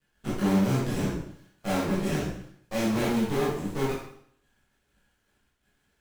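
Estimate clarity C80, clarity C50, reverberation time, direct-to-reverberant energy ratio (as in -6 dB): 5.5 dB, 1.5 dB, 0.65 s, -8.5 dB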